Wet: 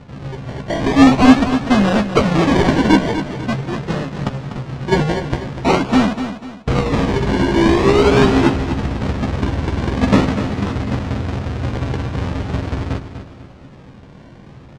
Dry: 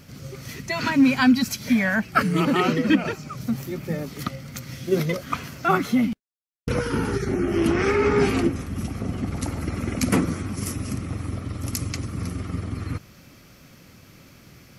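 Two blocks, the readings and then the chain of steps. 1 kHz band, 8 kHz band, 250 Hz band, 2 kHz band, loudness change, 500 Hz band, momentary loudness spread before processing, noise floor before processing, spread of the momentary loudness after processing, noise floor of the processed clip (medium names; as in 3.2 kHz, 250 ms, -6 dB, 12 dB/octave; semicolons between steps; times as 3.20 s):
+8.0 dB, 0.0 dB, +7.5 dB, +4.5 dB, +7.5 dB, +8.0 dB, 12 LU, -50 dBFS, 13 LU, -40 dBFS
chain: square wave that keeps the level; decimation with a swept rate 27×, swing 60% 0.44 Hz; distance through air 120 m; doubling 15 ms -7.5 dB; feedback delay 246 ms, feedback 36%, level -10 dB; trim +2.5 dB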